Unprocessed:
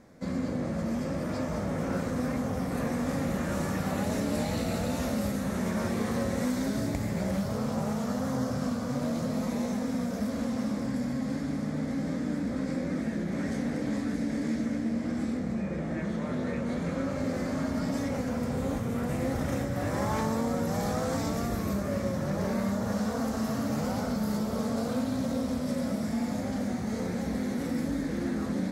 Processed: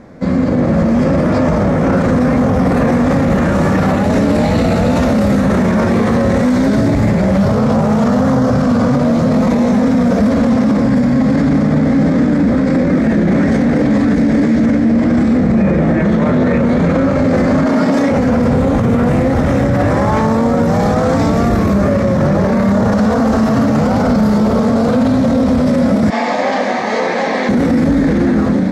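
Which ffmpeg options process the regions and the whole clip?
-filter_complex "[0:a]asettb=1/sr,asplit=3[s0][s1][s2];[s0]atrim=end=17.674[s3];[s1]atrim=start=17.67:end=18.12,asetpts=PTS-STARTPTS,afade=t=in:d=0.004:c=qsin,afade=t=out:st=0.446:d=0.004:c=qsin,highpass=240,asoftclip=type=hard:threshold=0.0596[s4];[s2]atrim=start=18.116[s5];[s3][s4]acrossfade=d=0.004:c1=hsin:c2=qsin[s6];[s6][s5]acrossfade=d=0.004:c1=qsin:c2=hsin,asettb=1/sr,asplit=3[s7][s8][s9];[s7]atrim=end=26.104[s10];[s8]atrim=start=26.1:end=27.49,asetpts=PTS-STARTPTS,afade=t=in:d=0.004:c=qsin,afade=t=out:st=1.386:d=0.004:c=qsin,highpass=730,lowpass=5000,bandreject=f=1400:w=5.4[s11];[s9]atrim=start=27.486[s12];[s10][s11]acrossfade=d=0.004:c1=hsin:c2=qsin[s13];[s13][s12]acrossfade=d=0.004:c1=qsin:c2=hsin,aemphasis=mode=reproduction:type=75fm,dynaudnorm=f=300:g=5:m=3.76,alimiter=level_in=11.2:limit=0.891:release=50:level=0:latency=1,volume=0.596"

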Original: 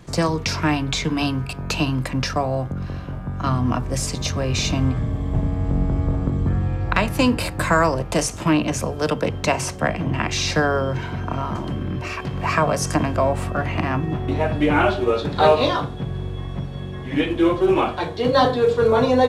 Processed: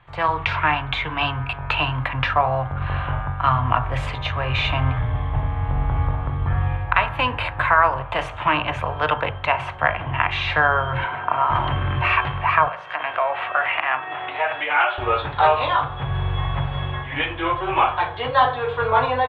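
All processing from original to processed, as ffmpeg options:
-filter_complex "[0:a]asettb=1/sr,asplit=3[s0][s1][s2];[s0]atrim=end=11.044[s3];[s1]atrim=start=11.04:end=11.5,asetpts=PTS-STARTPTS,afade=t=in:d=0.004:c=qsin,afade=t=out:st=0.456:d=0.004:c=qsin,highpass=260,aemphasis=mode=reproduction:type=75kf[s4];[s2]atrim=start=11.496[s5];[s3][s4]acrossfade=d=0.004:c1=hsin:c2=qsin[s6];[s6][s5]acrossfade=d=0.004:c1=qsin:c2=hsin,asettb=1/sr,asplit=3[s7][s8][s9];[s7]atrim=end=12.684[s10];[s8]atrim=start=12.68:end=14.98,asetpts=PTS-STARTPTS,afade=t=in:d=0.004:c=qsin,afade=t=out:st=2.296:d=0.004:c=qsin,equalizer=f=1000:w=1.5:g=-6.5,acompressor=threshold=0.0794:ratio=6:attack=3.2:release=140:knee=1:detection=peak,highpass=620,lowpass=3800[s11];[s9]atrim=start=14.976[s12];[s10][s11]acrossfade=d=0.004:c1=hsin:c2=qsin[s13];[s13][s12]acrossfade=d=0.004:c1=qsin:c2=hsin,bandreject=f=54.05:t=h:w=4,bandreject=f=108.1:t=h:w=4,bandreject=f=162.15:t=h:w=4,bandreject=f=216.2:t=h:w=4,bandreject=f=270.25:t=h:w=4,bandreject=f=324.3:t=h:w=4,bandreject=f=378.35:t=h:w=4,bandreject=f=432.4:t=h:w=4,bandreject=f=486.45:t=h:w=4,bandreject=f=540.5:t=h:w=4,bandreject=f=594.55:t=h:w=4,bandreject=f=648.6:t=h:w=4,bandreject=f=702.65:t=h:w=4,bandreject=f=756.7:t=h:w=4,bandreject=f=810.75:t=h:w=4,bandreject=f=864.8:t=h:w=4,bandreject=f=918.85:t=h:w=4,bandreject=f=972.9:t=h:w=4,bandreject=f=1026.95:t=h:w=4,bandreject=f=1081:t=h:w=4,bandreject=f=1135.05:t=h:w=4,bandreject=f=1189.1:t=h:w=4,bandreject=f=1243.15:t=h:w=4,bandreject=f=1297.2:t=h:w=4,bandreject=f=1351.25:t=h:w=4,bandreject=f=1405.3:t=h:w=4,bandreject=f=1459.35:t=h:w=4,bandreject=f=1513.4:t=h:w=4,bandreject=f=1567.45:t=h:w=4,bandreject=f=1621.5:t=h:w=4,bandreject=f=1675.55:t=h:w=4,dynaudnorm=f=140:g=3:m=6.68,firequalizer=gain_entry='entry(130,0);entry(180,-16);entry(850,9);entry(3300,4);entry(5200,-25)':delay=0.05:min_phase=1,volume=0.376"

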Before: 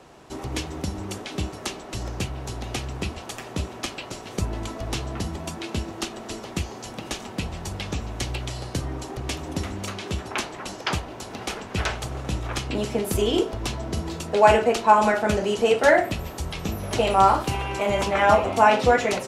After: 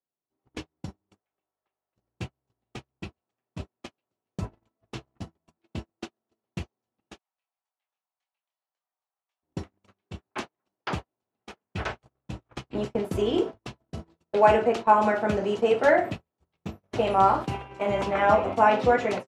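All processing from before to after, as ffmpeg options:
-filter_complex "[0:a]asettb=1/sr,asplit=3[s0][s1][s2];[s0]atrim=end=1.194[s3];[s1]atrim=start=1.19:end=1.96,asetpts=PTS-STARTPTS,afade=t=in:d=0.004:c=qsin,afade=t=out:st=0.766:d=0.004:c=qsin,asuperpass=centerf=1200:order=4:qfactor=0.56,aeval=exprs='val(0)+0.00355*(sin(2*PI*50*n/s)+sin(2*PI*2*50*n/s)/2+sin(2*PI*3*50*n/s)/3+sin(2*PI*4*50*n/s)/4+sin(2*PI*5*50*n/s)/5)':c=same[s4];[s2]atrim=start=1.956[s5];[s3][s4]acrossfade=d=0.004:c1=hsin:c2=qsin[s6];[s6][s5]acrossfade=d=0.004:c1=qsin:c2=hsin,asettb=1/sr,asplit=3[s7][s8][s9];[s7]atrim=end=7.184[s10];[s8]atrim=start=7.18:end=9.43,asetpts=PTS-STARTPTS,afade=t=in:d=0.004:c=qsin,afade=t=out:st=2.246:d=0.004:c=qsin,highpass=f=750:w=0.5412,highpass=f=750:w=1.3066,flanger=delay=20:depth=7.5:speed=1.8[s11];[s9]atrim=start=9.426[s12];[s10][s11]acrossfade=d=0.004:c1=hsin:c2=qsin[s13];[s13][s12]acrossfade=d=0.004:c1=qsin:c2=hsin,highpass=94,agate=range=0.00447:threshold=0.0447:ratio=16:detection=peak,lowpass=f=1800:p=1,volume=0.794"

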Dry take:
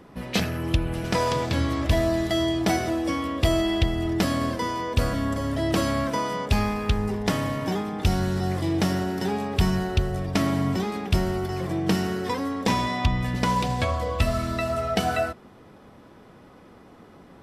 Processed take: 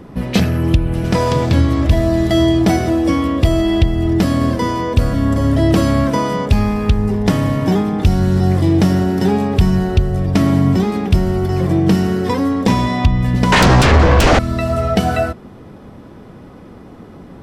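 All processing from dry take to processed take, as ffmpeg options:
-filter_complex "[0:a]asettb=1/sr,asplit=3[s0][s1][s2];[s0]atrim=end=13.524[s3];[s1]atrim=start=13.52:end=14.39,asetpts=PTS-STARTPTS,afade=t=in:d=0.004:c=qsin,afade=t=out:st=0.866:d=0.004:c=qsin,lowpass=f=6100:w=0.5412,lowpass=f=6100:w=1.3066,aeval=exprs='0.266*sin(PI/2*5.62*val(0)/0.266)':c=same,asplit=2[s4][s5];[s5]adelay=15,volume=0.224[s6];[s4][s6]amix=inputs=2:normalize=0,atrim=end_sample=38367[s7];[s2]atrim=start=14.386[s8];[s3][s7]acrossfade=d=0.004:c1=hsin:c2=qsin[s9];[s9][s8]acrossfade=d=0.004:c1=qsin:c2=hsin,lowshelf=f=420:g=9.5,alimiter=limit=0.355:level=0:latency=1:release=480,volume=2"

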